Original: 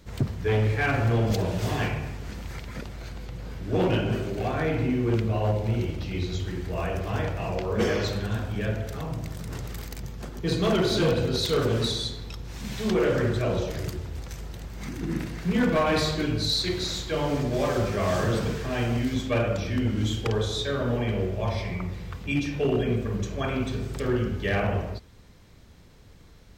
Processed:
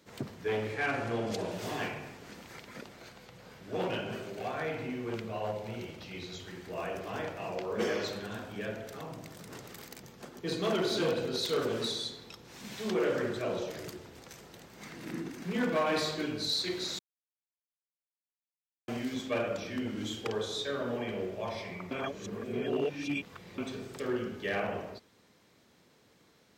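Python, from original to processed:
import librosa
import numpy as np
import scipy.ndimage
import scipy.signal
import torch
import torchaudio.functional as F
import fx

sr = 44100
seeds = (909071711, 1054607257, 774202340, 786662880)

y = fx.lowpass(x, sr, hz=12000.0, slope=24, at=(0.73, 1.51))
y = fx.peak_eq(y, sr, hz=310.0, db=-7.0, octaves=0.77, at=(3.1, 6.67))
y = fx.edit(y, sr, fx.reverse_span(start_s=14.88, length_s=0.55),
    fx.silence(start_s=16.99, length_s=1.89),
    fx.reverse_span(start_s=21.91, length_s=1.67), tone=tone)
y = scipy.signal.sosfilt(scipy.signal.butter(2, 230.0, 'highpass', fs=sr, output='sos'), y)
y = F.gain(torch.from_numpy(y), -5.5).numpy()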